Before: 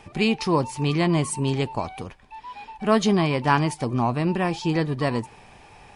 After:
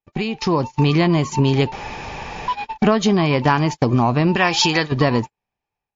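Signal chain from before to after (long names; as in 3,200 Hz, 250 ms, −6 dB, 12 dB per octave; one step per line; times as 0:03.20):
downward compressor 10 to 1, threshold −30 dBFS, peak gain reduction 17 dB
0:04.36–0:04.92: tilt shelving filter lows −8.5 dB, about 680 Hz
noise gate −38 dBFS, range −53 dB
0:01.72–0:02.48: fill with room tone
automatic gain control gain up to 9 dB
level +8.5 dB
WMA 128 kbit/s 16,000 Hz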